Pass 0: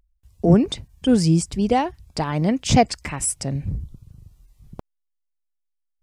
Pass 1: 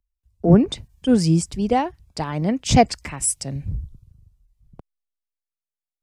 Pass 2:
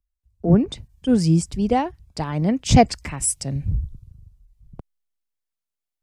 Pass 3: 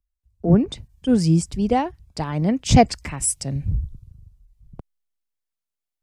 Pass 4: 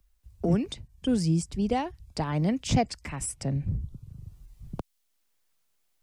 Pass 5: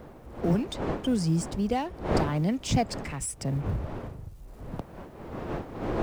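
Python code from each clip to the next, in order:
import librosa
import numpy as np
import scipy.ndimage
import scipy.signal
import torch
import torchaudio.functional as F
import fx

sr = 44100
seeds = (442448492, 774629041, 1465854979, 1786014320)

y1 = fx.band_widen(x, sr, depth_pct=40)
y1 = y1 * librosa.db_to_amplitude(-1.0)
y2 = fx.rider(y1, sr, range_db=4, speed_s=2.0)
y2 = fx.low_shelf(y2, sr, hz=220.0, db=5.0)
y2 = y2 * librosa.db_to_amplitude(-2.5)
y3 = y2
y4 = fx.band_squash(y3, sr, depth_pct=70)
y4 = y4 * librosa.db_to_amplitude(-7.0)
y5 = fx.law_mismatch(y4, sr, coded='mu')
y5 = fx.dmg_wind(y5, sr, seeds[0], corner_hz=530.0, level_db=-34.0)
y5 = y5 * librosa.db_to_amplitude(-1.5)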